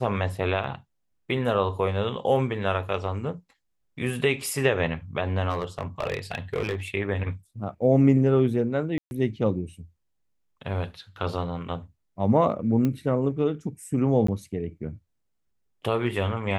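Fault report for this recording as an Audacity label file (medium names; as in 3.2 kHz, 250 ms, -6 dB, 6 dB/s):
0.640000	0.640000	dropout 2.9 ms
5.490000	6.750000	clipped -21.5 dBFS
8.980000	9.110000	dropout 131 ms
12.850000	12.850000	pop -15 dBFS
14.270000	14.280000	dropout 14 ms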